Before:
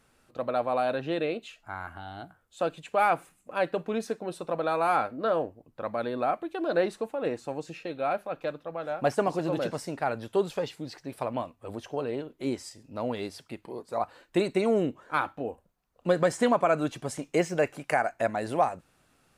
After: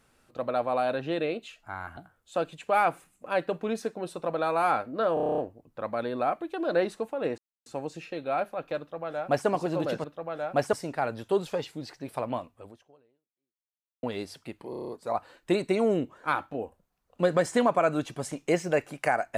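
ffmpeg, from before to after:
ffmpeg -i in.wav -filter_complex "[0:a]asplit=20[link_01][link_02][link_03][link_04][link_05][link_06][link_07][link_08][link_09][link_10][link_11][link_12][link_13][link_14][link_15][link_16][link_17][link_18][link_19][link_20];[link_01]atrim=end=1.972[link_21];[link_02]atrim=start=2.218:end=5.422[link_22];[link_03]atrim=start=5.388:end=5.422[link_23];[link_04]atrim=start=5.388:end=5.422[link_24];[link_05]atrim=start=5.388:end=5.422[link_25];[link_06]atrim=start=5.388:end=5.422[link_26];[link_07]atrim=start=5.388:end=5.422[link_27];[link_08]atrim=start=5.388:end=5.422[link_28];[link_09]atrim=start=5.388:end=5.422[link_29];[link_10]atrim=start=5.388:end=7.39,asetpts=PTS-STARTPTS,afade=type=out:start_time=1.998:duration=0.004:curve=hsin,apad=pad_dur=0.28[link_30];[link_11]atrim=start=7.39:end=9.772,asetpts=PTS-STARTPTS,afade=type=in:duration=0.004:curve=hsin[link_31];[link_12]atrim=start=8.518:end=9.212[link_32];[link_13]atrim=start=9.768:end=13.07,asetpts=PTS-STARTPTS,afade=type=out:start_time=1.802:duration=1.5:curve=exp[link_33];[link_14]atrim=start=13.07:end=13.772,asetpts=PTS-STARTPTS,afade=type=in:duration=0.004:curve=hsin[link_34];[link_15]atrim=start=13.738:end=13.772[link_35];[link_16]atrim=start=13.738:end=13.772[link_36];[link_17]atrim=start=13.738:end=13.772[link_37];[link_18]atrim=start=13.738:end=13.772[link_38];[link_19]atrim=start=13.738:end=13.772[link_39];[link_20]atrim=start=13.738[link_40];[link_21][link_22]acrossfade=duration=0.004:curve1=hsin:curve2=hsin[link_41];[link_41][link_23]acrossfade=duration=0.004:curve1=hsin:curve2=hsin[link_42];[link_42][link_24]acrossfade=duration=0.004:curve1=hsin:curve2=hsin[link_43];[link_43][link_25]acrossfade=duration=0.004:curve1=hsin:curve2=hsin[link_44];[link_44][link_26]acrossfade=duration=0.004:curve1=hsin:curve2=hsin[link_45];[link_45][link_27]acrossfade=duration=0.004:curve1=hsin:curve2=hsin[link_46];[link_46][link_28]acrossfade=duration=0.004:curve1=hsin:curve2=hsin[link_47];[link_47][link_29]acrossfade=duration=0.004:curve1=hsin:curve2=hsin[link_48];[link_30][link_31]concat=n=2:v=0:a=1[link_49];[link_48][link_49]acrossfade=duration=0.004:curve1=hsin:curve2=hsin[link_50];[link_50][link_32]acrossfade=duration=0.004:curve1=hsin:curve2=hsin[link_51];[link_33][link_34]concat=n=2:v=0:a=1[link_52];[link_51][link_52]acrossfade=duration=0.004:curve1=hsin:curve2=hsin[link_53];[link_53][link_35]acrossfade=duration=0.004:curve1=hsin:curve2=hsin[link_54];[link_54][link_36]acrossfade=duration=0.004:curve1=hsin:curve2=hsin[link_55];[link_55][link_37]acrossfade=duration=0.004:curve1=hsin:curve2=hsin[link_56];[link_56][link_38]acrossfade=duration=0.004:curve1=hsin:curve2=hsin[link_57];[link_57][link_39]acrossfade=duration=0.004:curve1=hsin:curve2=hsin[link_58];[link_58][link_40]acrossfade=duration=0.004:curve1=hsin:curve2=hsin" out.wav

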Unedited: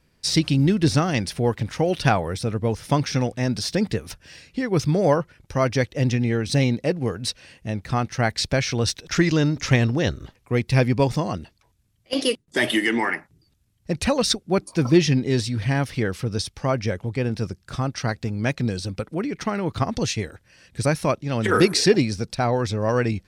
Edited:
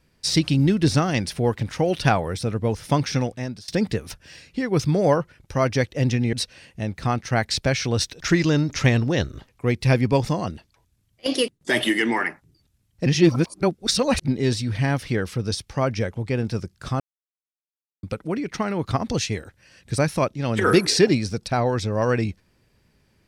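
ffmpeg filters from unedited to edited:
ffmpeg -i in.wav -filter_complex "[0:a]asplit=7[link_01][link_02][link_03][link_04][link_05][link_06][link_07];[link_01]atrim=end=3.68,asetpts=PTS-STARTPTS,afade=type=out:start_time=3.16:duration=0.52:silence=0.0630957[link_08];[link_02]atrim=start=3.68:end=6.332,asetpts=PTS-STARTPTS,afade=type=in:duration=0.004:curve=hsin:silence=0.0630957[link_09];[link_03]atrim=start=7.198:end=13.932[link_10];[link_04]atrim=start=13.928:end=15.152,asetpts=PTS-STARTPTS,areverse[link_11];[link_05]atrim=start=15.148:end=17.87,asetpts=PTS-STARTPTS,afade=type=out:start_time=2.718:duration=0.004:curve=hsin[link_12];[link_06]atrim=start=17.87:end=18.9,asetpts=PTS-STARTPTS,volume=0[link_13];[link_07]atrim=start=18.9,asetpts=PTS-STARTPTS,afade=type=in:duration=0.004:curve=hsin[link_14];[link_08][link_09]concat=n=2:v=0:a=1[link_15];[link_15][link_10]acrossfade=duration=0.004:curve1=hsin:curve2=hsin[link_16];[link_16][link_11]acrossfade=duration=0.004:curve1=hsin:curve2=hsin[link_17];[link_12][link_13][link_14]concat=n=3:v=0:a=1[link_18];[link_17][link_18]acrossfade=duration=0.004:curve1=hsin:curve2=hsin" out.wav

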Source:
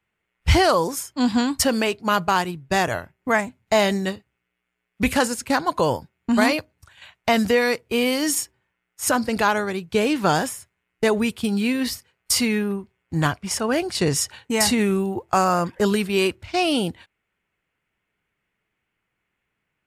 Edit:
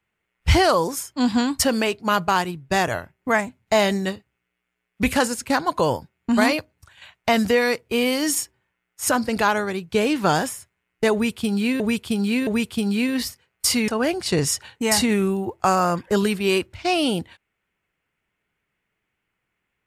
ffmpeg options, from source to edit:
ffmpeg -i in.wav -filter_complex "[0:a]asplit=4[link_01][link_02][link_03][link_04];[link_01]atrim=end=11.802[link_05];[link_02]atrim=start=11.128:end=11.802[link_06];[link_03]atrim=start=11.128:end=12.542[link_07];[link_04]atrim=start=13.568[link_08];[link_05][link_06]acrossfade=duration=0.004:curve1=hsin:curve2=hsin[link_09];[link_09][link_07]acrossfade=duration=0.004:curve1=hsin:curve2=hsin[link_10];[link_10][link_08]acrossfade=duration=0.004:curve1=hsin:curve2=hsin" out.wav

